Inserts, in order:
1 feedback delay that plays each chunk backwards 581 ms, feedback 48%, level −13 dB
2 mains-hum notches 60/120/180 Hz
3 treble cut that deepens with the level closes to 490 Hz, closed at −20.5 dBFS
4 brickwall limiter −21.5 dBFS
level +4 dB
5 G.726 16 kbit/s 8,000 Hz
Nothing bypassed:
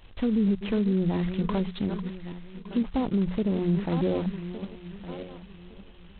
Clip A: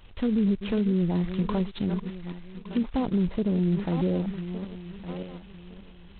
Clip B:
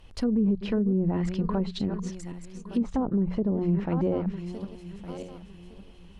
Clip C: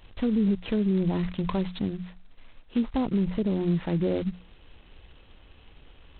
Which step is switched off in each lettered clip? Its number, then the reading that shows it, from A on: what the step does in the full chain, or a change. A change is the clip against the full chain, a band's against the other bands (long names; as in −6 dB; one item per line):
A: 2, 125 Hz band +1.5 dB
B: 5, 2 kHz band −3.5 dB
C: 1, change in momentary loudness spread −8 LU